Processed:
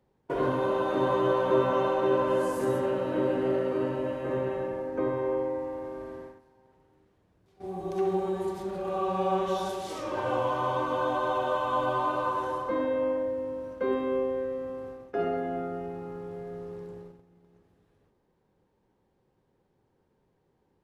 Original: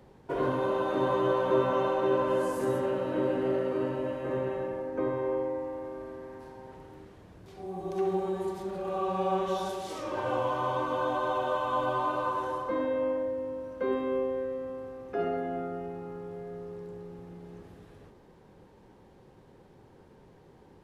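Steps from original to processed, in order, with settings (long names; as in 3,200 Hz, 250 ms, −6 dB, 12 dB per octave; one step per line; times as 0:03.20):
noise gate −42 dBFS, range −17 dB
level +1.5 dB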